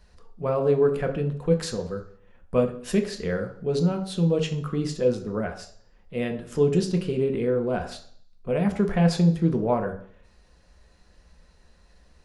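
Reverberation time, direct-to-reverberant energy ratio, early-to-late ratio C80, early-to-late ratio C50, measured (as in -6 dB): 0.55 s, 4.0 dB, 14.5 dB, 11.0 dB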